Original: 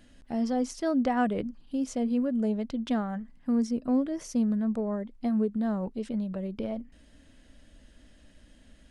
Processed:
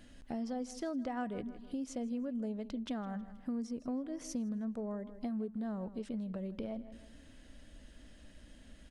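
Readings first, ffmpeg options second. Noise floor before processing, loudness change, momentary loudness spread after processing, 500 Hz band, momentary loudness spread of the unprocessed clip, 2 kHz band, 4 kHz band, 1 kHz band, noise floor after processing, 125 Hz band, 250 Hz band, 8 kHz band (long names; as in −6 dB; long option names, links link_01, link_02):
−57 dBFS, −10.0 dB, 20 LU, −10.0 dB, 7 LU, −10.5 dB, −6.5 dB, −11.0 dB, −57 dBFS, can't be measured, −10.0 dB, −6.0 dB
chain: -af "aecho=1:1:159|318|477:0.126|0.0378|0.0113,acompressor=threshold=-39dB:ratio=3"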